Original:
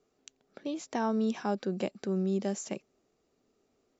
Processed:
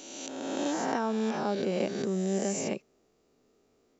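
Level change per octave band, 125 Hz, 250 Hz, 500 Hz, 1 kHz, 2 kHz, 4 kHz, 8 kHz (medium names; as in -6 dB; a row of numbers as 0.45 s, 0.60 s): +0.5 dB, +1.0 dB, +3.5 dB, +3.5 dB, +5.5 dB, +6.5 dB, no reading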